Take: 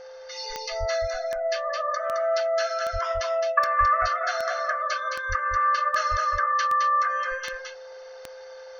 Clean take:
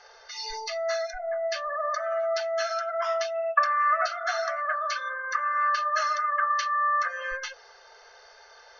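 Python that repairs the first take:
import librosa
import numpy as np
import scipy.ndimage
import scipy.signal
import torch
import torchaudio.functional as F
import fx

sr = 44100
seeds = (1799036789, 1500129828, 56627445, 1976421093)

y = fx.fix_declick_ar(x, sr, threshold=10.0)
y = fx.notch(y, sr, hz=520.0, q=30.0)
y = fx.fix_deplosive(y, sr, at_s=(0.79, 2.92, 3.79, 5.28, 6.1))
y = fx.fix_echo_inverse(y, sr, delay_ms=215, level_db=-4.5)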